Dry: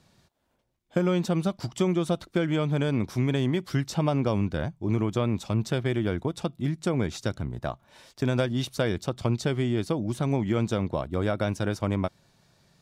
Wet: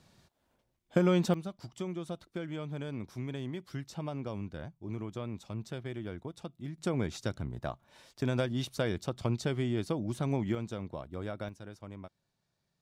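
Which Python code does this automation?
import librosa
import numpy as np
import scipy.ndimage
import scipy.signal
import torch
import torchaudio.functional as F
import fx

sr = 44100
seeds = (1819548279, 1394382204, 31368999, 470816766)

y = fx.gain(x, sr, db=fx.steps((0.0, -1.5), (1.34, -13.0), (6.78, -5.5), (10.55, -12.0), (11.49, -19.0)))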